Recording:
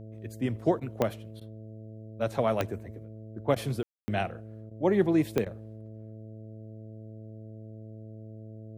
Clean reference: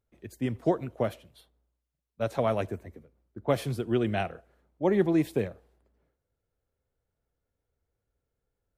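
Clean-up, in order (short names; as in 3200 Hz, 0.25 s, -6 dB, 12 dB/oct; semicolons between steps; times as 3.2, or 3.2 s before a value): de-click; de-hum 109.4 Hz, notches 6; room tone fill 3.83–4.08; interpolate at 0.8/1.4/3.55/4.7/5.45, 11 ms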